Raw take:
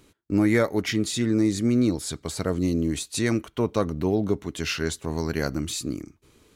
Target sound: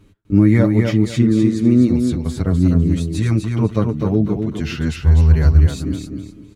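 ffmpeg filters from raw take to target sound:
-filter_complex "[0:a]bass=f=250:g=12,treble=f=4k:g=-7,aecho=1:1:251|502|753:0.562|0.146|0.038,asplit=3[a][b][c];[a]afade=t=out:st=4.94:d=0.02[d];[b]asubboost=boost=11:cutoff=64,afade=t=in:st=4.94:d=0.02,afade=t=out:st=5.65:d=0.02[e];[c]afade=t=in:st=5.65:d=0.02[f];[d][e][f]amix=inputs=3:normalize=0,asplit=2[g][h];[h]adelay=7.3,afreqshift=0.31[i];[g][i]amix=inputs=2:normalize=1,volume=3dB"

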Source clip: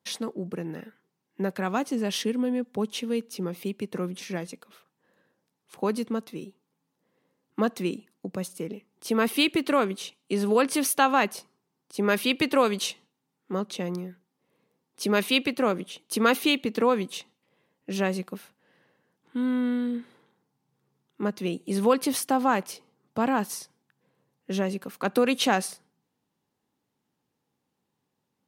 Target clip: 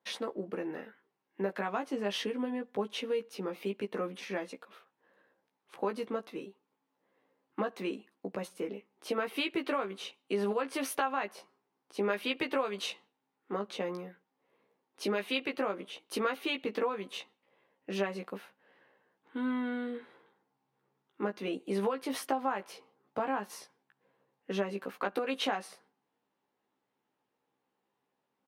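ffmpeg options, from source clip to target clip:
-filter_complex "[0:a]bass=f=250:g=-15,treble=f=4k:g=-14,acompressor=threshold=-30dB:ratio=6,asplit=2[a][b];[b]adelay=15,volume=-4.5dB[c];[a][c]amix=inputs=2:normalize=0"

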